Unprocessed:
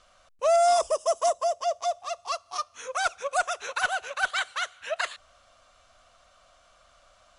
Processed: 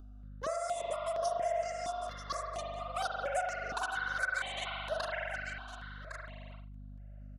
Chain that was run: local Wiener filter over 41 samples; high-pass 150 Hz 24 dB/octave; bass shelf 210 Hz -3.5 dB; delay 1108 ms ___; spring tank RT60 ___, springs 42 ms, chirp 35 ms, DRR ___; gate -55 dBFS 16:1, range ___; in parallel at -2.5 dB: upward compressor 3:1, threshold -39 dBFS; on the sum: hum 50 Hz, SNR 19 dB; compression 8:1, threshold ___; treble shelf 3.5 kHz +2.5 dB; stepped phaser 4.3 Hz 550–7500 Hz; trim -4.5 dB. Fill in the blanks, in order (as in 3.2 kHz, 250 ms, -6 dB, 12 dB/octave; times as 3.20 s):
-13.5 dB, 1.9 s, -1.5 dB, -30 dB, -24 dBFS